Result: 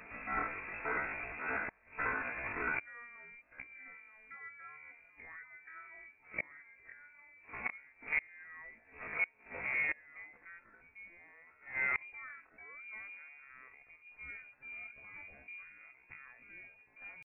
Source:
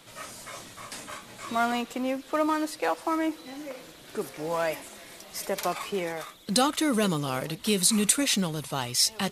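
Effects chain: comb 4.7 ms, depth 36%; echoes that change speed 0.294 s, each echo -2 st, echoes 2, each echo -6 dB; flipped gate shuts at -25 dBFS, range -30 dB; inverted band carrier 2600 Hz; tempo 0.54×; gain +4 dB

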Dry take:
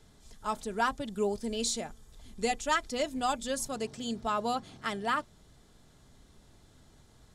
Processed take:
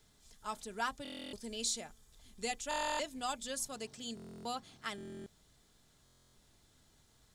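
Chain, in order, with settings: tilt shelf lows -4 dB, about 1500 Hz; requantised 12-bit, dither none; stuck buffer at 1.03/2.69/4.15/4.96/6.04, samples 1024, times 12; gain -6.5 dB

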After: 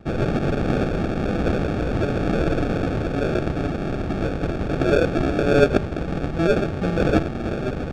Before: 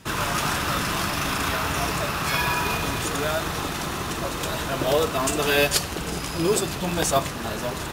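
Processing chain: sample-rate reducer 1000 Hz, jitter 0%; tape spacing loss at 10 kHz 23 dB; gain +4.5 dB

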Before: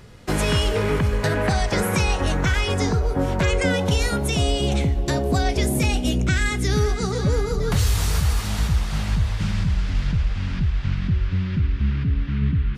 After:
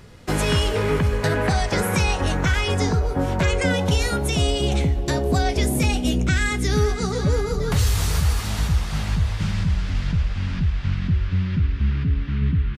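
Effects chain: doubler 12 ms -13 dB

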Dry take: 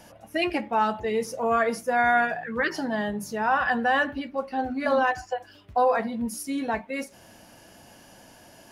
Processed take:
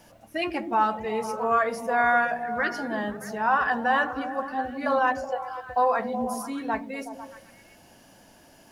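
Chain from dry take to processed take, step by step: dynamic EQ 1100 Hz, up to +7 dB, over -36 dBFS, Q 1.3; added noise pink -63 dBFS; delay with a stepping band-pass 0.124 s, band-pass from 230 Hz, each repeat 0.7 oct, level -3.5 dB; gain -4 dB

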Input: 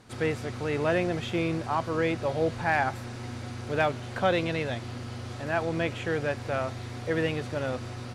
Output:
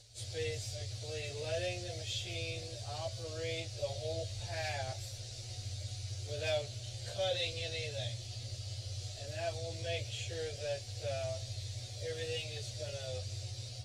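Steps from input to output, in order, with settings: EQ curve 110 Hz 0 dB, 170 Hz -27 dB, 270 Hz -25 dB, 620 Hz -5 dB, 940 Hz -24 dB, 1300 Hz -23 dB, 4200 Hz +6 dB, 7400 Hz +6 dB, 11000 Hz -1 dB; plain phase-vocoder stretch 1.7×; gain +1 dB

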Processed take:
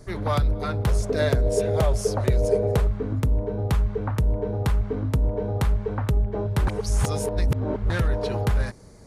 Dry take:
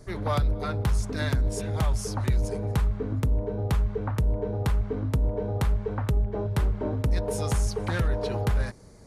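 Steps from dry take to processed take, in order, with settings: 0.87–2.87 band shelf 520 Hz +10.5 dB 1 oct; 6.67–7.9 reverse; gain +2.5 dB

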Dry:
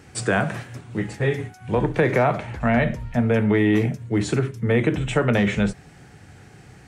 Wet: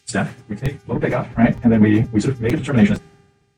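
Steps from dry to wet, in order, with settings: bell 200 Hz +7 dB 1.4 oct; plain phase-vocoder stretch 0.52×; buzz 400 Hz, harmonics 17, -49 dBFS -7 dB/oct; crackling interface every 0.46 s, samples 256, repeat, from 0.65; three-band expander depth 100%; gain +3 dB

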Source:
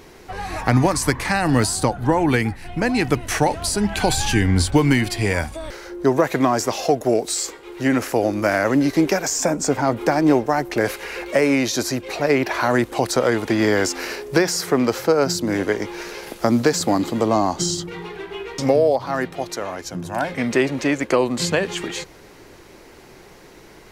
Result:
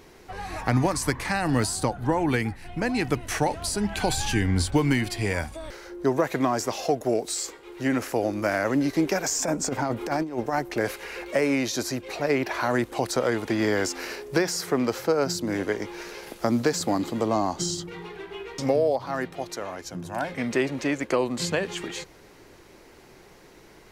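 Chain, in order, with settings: 9.14–10.59 negative-ratio compressor -19 dBFS, ratio -0.5; gain -6 dB

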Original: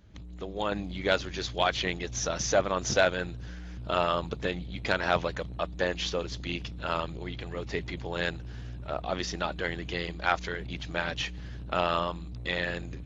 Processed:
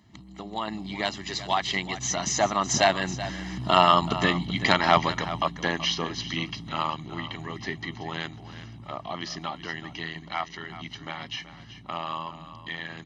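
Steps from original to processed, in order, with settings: Doppler pass-by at 4.2, 20 m/s, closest 19 m; HPF 170 Hz 12 dB/oct; comb 1 ms, depth 76%; in parallel at +2 dB: compressor, threshold -48 dBFS, peak gain reduction 24 dB; on the sum: echo 0.379 s -13.5 dB; gain +8 dB

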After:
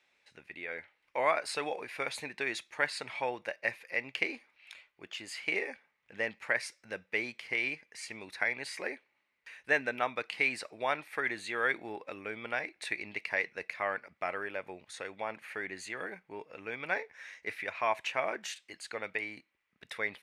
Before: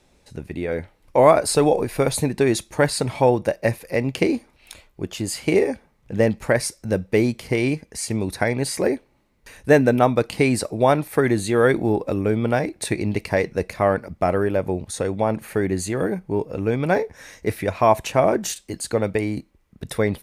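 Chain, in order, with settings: band-pass 2200 Hz, Q 1.7; gain -2 dB

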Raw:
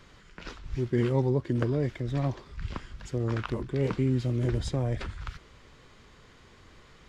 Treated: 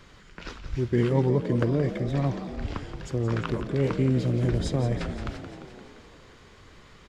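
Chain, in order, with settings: frequency-shifting echo 0.173 s, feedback 65%, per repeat +50 Hz, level -11 dB; gain +2.5 dB

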